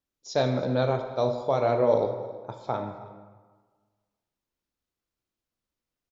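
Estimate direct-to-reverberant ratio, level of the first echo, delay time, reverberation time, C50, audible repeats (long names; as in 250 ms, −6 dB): 5.5 dB, −21.5 dB, 318 ms, 1.5 s, 7.0 dB, 1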